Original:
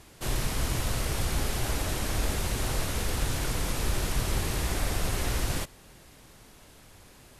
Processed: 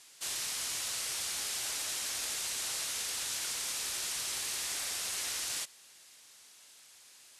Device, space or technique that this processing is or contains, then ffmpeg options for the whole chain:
piezo pickup straight into a mixer: -af "lowpass=7500,aderivative,volume=2"

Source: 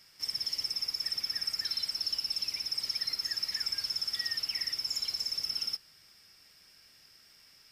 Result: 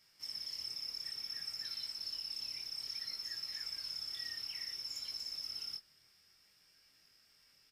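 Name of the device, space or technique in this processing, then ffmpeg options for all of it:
double-tracked vocal: -filter_complex "[0:a]asplit=2[s0][s1];[s1]adelay=25,volume=0.299[s2];[s0][s2]amix=inputs=2:normalize=0,flanger=delay=17.5:depth=7.9:speed=0.59,volume=0.501"

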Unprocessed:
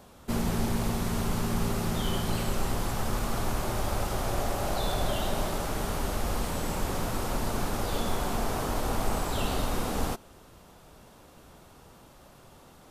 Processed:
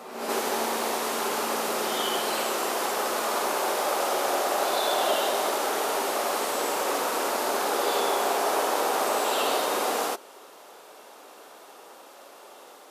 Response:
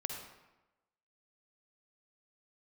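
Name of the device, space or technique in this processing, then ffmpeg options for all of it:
ghost voice: -filter_complex "[0:a]areverse[s0];[1:a]atrim=start_sample=2205[s1];[s0][s1]afir=irnorm=-1:irlink=0,areverse,highpass=f=360:w=0.5412,highpass=f=360:w=1.3066,volume=2.24"

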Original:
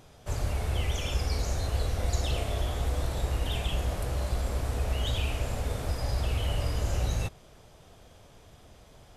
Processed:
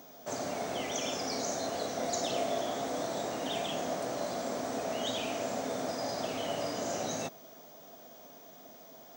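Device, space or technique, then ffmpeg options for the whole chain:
old television with a line whistle: -af "highpass=f=190:w=0.5412,highpass=f=190:w=1.3066,equalizer=f=260:t=q:w=4:g=7,equalizer=f=670:t=q:w=4:g=8,equalizer=f=2700:t=q:w=4:g=-5,equalizer=f=6100:t=q:w=4:g=7,lowpass=f=8100:w=0.5412,lowpass=f=8100:w=1.3066,aeval=exprs='val(0)+0.002*sin(2*PI*15625*n/s)':c=same"

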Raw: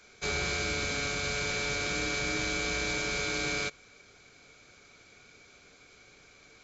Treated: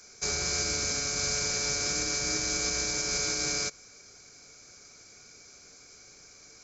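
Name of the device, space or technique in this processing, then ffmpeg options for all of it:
over-bright horn tweeter: -af "highshelf=f=4300:t=q:w=3:g=7.5,alimiter=limit=0.106:level=0:latency=1:release=141"

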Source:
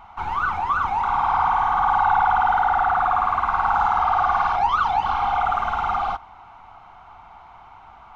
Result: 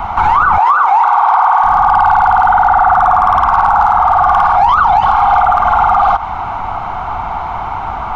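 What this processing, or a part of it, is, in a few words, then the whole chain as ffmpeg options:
mastering chain: -filter_complex "[0:a]equalizer=f=2800:t=o:w=0.77:g=-2,acrossover=split=280|560|1400[s0][s1][s2][s3];[s0]acompressor=threshold=0.00891:ratio=4[s4];[s1]acompressor=threshold=0.00141:ratio=4[s5];[s2]acompressor=threshold=0.0891:ratio=4[s6];[s3]acompressor=threshold=0.0126:ratio=4[s7];[s4][s5][s6][s7]amix=inputs=4:normalize=0,acompressor=threshold=0.0447:ratio=3,tiltshelf=f=1500:g=3.5,asoftclip=type=hard:threshold=0.106,alimiter=level_in=18.8:limit=0.891:release=50:level=0:latency=1,asettb=1/sr,asplit=3[s8][s9][s10];[s8]atrim=end=0.584[s11];[s9]atrim=start=0.58:end=1.64,asetpts=PTS-STARTPTS,afade=t=in:d=0.004:c=qsin,afade=t=out:st=1.056:d=0.004:c=qsin,highpass=f=400:w=0.5412,highpass=f=400:w=1.3066[s12];[s10]atrim=start=1.636[s13];[s11][s12]acrossfade=d=0.004:c1=hsin:c2=qsin[s14];[s14][s13]acrossfade=d=0.004:c1=qsin:c2=hsin,volume=0.841"

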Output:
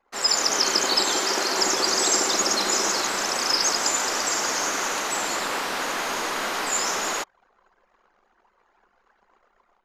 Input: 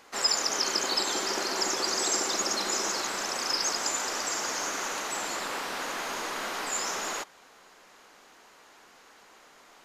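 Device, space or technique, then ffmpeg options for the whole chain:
voice memo with heavy noise removal: -filter_complex "[0:a]asettb=1/sr,asplit=3[s0][s1][s2];[s0]atrim=end=1.154[s3];[s1]atrim=start=1.15:end=1.57,asetpts=PTS-STARTPTS,afade=t=in:d=0.004:c=qsin,afade=t=out:st=0.416:d=0.004:c=qsin,highpass=f=220:p=1[s4];[s2]atrim=start=1.566[s5];[s3][s4]acrossfade=d=0.004:c1=hsin:c2=qsin[s6];[s6][s5]acrossfade=d=0.004:c1=qsin:c2=hsin,anlmdn=0.00631,dynaudnorm=f=110:g=5:m=2.11"

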